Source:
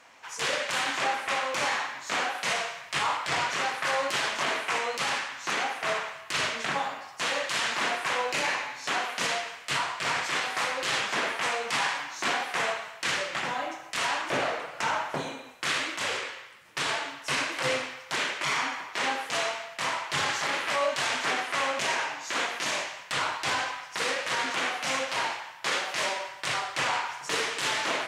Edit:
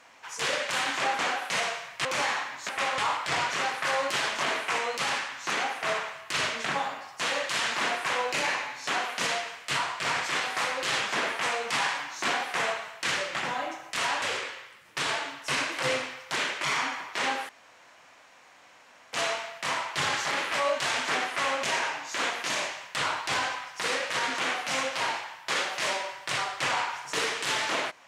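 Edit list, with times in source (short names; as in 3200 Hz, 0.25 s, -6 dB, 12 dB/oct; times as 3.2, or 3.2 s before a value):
1.19–1.48 swap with 2.12–2.98
14.22–16.02 cut
19.29 insert room tone 1.64 s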